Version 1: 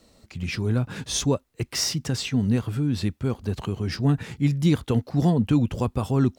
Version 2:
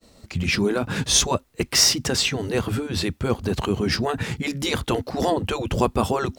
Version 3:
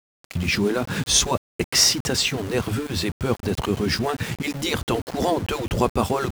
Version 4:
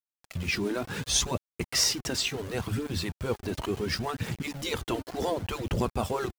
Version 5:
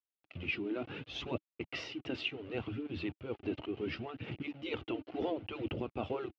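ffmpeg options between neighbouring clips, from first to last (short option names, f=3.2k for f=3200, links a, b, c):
-af "agate=range=-33dB:threshold=-52dB:ratio=3:detection=peak,afftfilt=real='re*lt(hypot(re,im),0.398)':imag='im*lt(hypot(re,im),0.398)':win_size=1024:overlap=0.75,volume=9dB"
-af "aeval=exprs='val(0)*gte(abs(val(0)),0.0266)':c=same"
-af "aphaser=in_gain=1:out_gain=1:delay=3.4:decay=0.39:speed=0.7:type=triangular,volume=-8dB"
-af "tremolo=f=2.3:d=0.48,highpass=110,equalizer=f=180:t=q:w=4:g=-8,equalizer=f=310:t=q:w=4:g=8,equalizer=f=1k:t=q:w=4:g=-7,equalizer=f=1.7k:t=q:w=4:g=-8,equalizer=f=2.8k:t=q:w=4:g=7,lowpass=f=3k:w=0.5412,lowpass=f=3k:w=1.3066,volume=-5.5dB"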